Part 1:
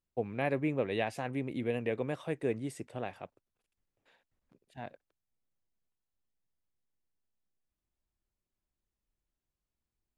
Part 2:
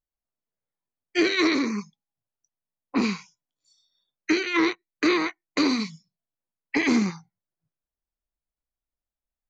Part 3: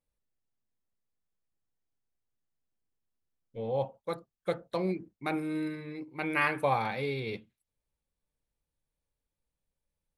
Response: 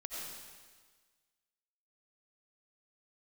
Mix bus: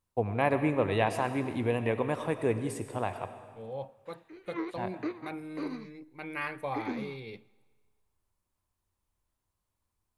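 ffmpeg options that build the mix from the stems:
-filter_complex "[0:a]equalizer=f=100:t=o:w=0.67:g=11,equalizer=f=1k:t=o:w=0.67:g=11,equalizer=f=10k:t=o:w=0.67:g=6,equalizer=f=130:t=o:w=0.28:g=-6,volume=0.5dB,asplit=2[a][b];[b]volume=-5.5dB[c];[1:a]tremolo=f=8.7:d=0.47,bandpass=f=530:t=q:w=0.83:csg=0,volume=-8.5dB[d];[2:a]volume=-8dB,asplit=3[e][f][g];[f]volume=-21.5dB[h];[g]apad=whole_len=418636[i];[d][i]sidechaingate=range=-13dB:threshold=-57dB:ratio=16:detection=peak[j];[3:a]atrim=start_sample=2205[k];[c][h]amix=inputs=2:normalize=0[l];[l][k]afir=irnorm=-1:irlink=0[m];[a][j][e][m]amix=inputs=4:normalize=0"

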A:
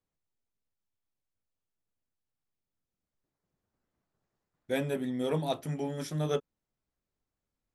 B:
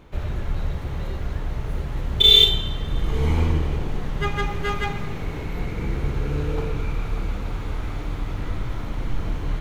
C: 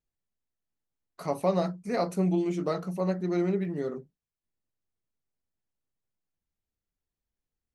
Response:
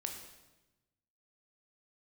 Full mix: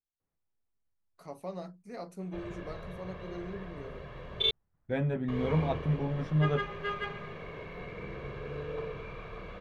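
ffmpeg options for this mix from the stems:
-filter_complex "[0:a]lowpass=1.9k,asubboost=boost=5:cutoff=140,adelay=200,volume=0.5dB[a];[1:a]acrossover=split=160 3800:gain=0.112 1 0.0891[b][c][d];[b][c][d]amix=inputs=3:normalize=0,aecho=1:1:1.8:0.68,adelay=2200,volume=-9dB,asplit=3[e][f][g];[e]atrim=end=4.51,asetpts=PTS-STARTPTS,afade=t=out:st=4.506:d=0.004:c=hsin[h];[f]atrim=start=4.51:end=5.28,asetpts=PTS-STARTPTS,volume=0[i];[g]atrim=start=5.28,asetpts=PTS-STARTPTS,afade=t=in:d=0.004:c=hsin[j];[h][i][j]concat=n=3:v=0:a=1[k];[2:a]volume=-14dB[l];[a][k][l]amix=inputs=3:normalize=0"

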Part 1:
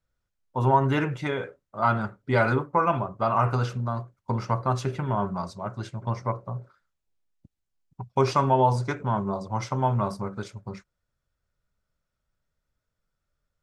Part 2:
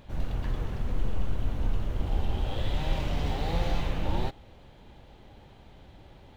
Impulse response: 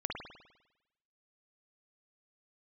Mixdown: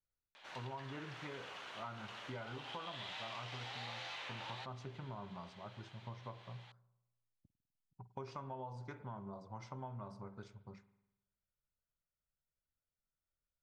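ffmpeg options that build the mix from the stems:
-filter_complex "[0:a]volume=-18dB,asplit=2[a][b];[b]volume=-15dB[c];[1:a]highpass=1.3k,adelay=350,volume=3dB[d];[2:a]atrim=start_sample=2205[e];[c][e]afir=irnorm=-1:irlink=0[f];[a][d][f]amix=inputs=3:normalize=0,lowpass=5.8k,acompressor=threshold=-43dB:ratio=6"

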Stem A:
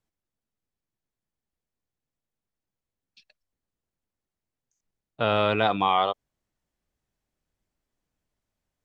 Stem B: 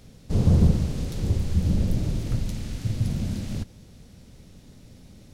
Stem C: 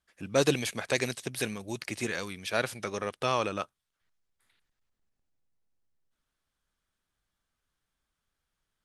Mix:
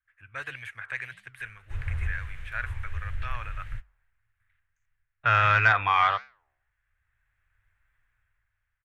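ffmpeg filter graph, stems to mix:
-filter_complex "[0:a]bandreject=f=3k:w=20,dynaudnorm=f=290:g=7:m=15dB,adelay=50,volume=-2.5dB[a];[1:a]equalizer=f=130:w=0.43:g=-10.5,adelay=1400,volume=-5dB[b];[2:a]volume=-7dB,asplit=2[c][d];[d]apad=whole_len=296942[e];[b][e]sidechaingate=range=-42dB:threshold=-60dB:ratio=16:detection=peak[f];[a][f][c]amix=inputs=3:normalize=0,firequalizer=gain_entry='entry(110,0);entry(170,-27);entry(1600,9);entry(4700,-24);entry(8100,-16)':delay=0.05:min_phase=1,acontrast=58,flanger=delay=7.2:depth=8.5:regen=-88:speed=1.6:shape=sinusoidal"

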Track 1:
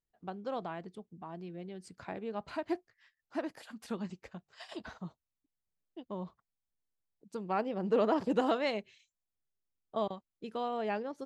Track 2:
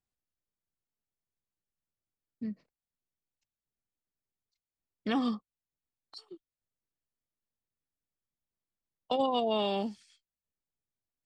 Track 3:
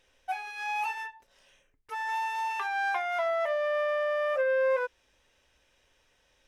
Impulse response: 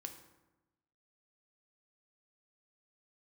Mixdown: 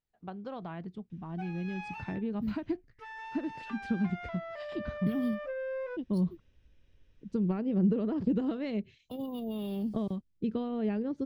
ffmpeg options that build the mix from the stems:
-filter_complex "[0:a]volume=0dB[a];[1:a]alimiter=level_in=2dB:limit=-24dB:level=0:latency=1:release=260,volume=-2dB,acrusher=samples=3:mix=1:aa=0.000001,volume=-9dB[b];[2:a]adelay=1100,volume=-8.5dB[c];[a][c]amix=inputs=2:normalize=0,lowpass=4.4k,acompressor=threshold=-35dB:ratio=10,volume=0dB[d];[b][d]amix=inputs=2:normalize=0,asubboost=boost=11:cutoff=240"

